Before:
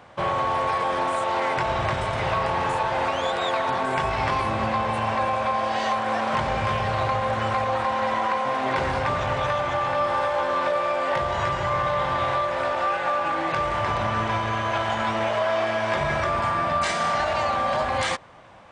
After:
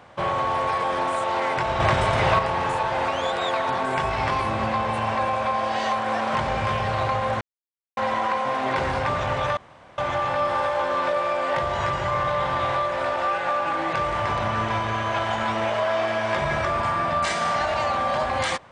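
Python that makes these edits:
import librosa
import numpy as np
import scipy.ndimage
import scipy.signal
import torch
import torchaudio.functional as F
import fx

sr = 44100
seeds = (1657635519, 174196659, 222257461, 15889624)

y = fx.edit(x, sr, fx.clip_gain(start_s=1.8, length_s=0.59, db=5.0),
    fx.silence(start_s=7.41, length_s=0.56),
    fx.insert_room_tone(at_s=9.57, length_s=0.41), tone=tone)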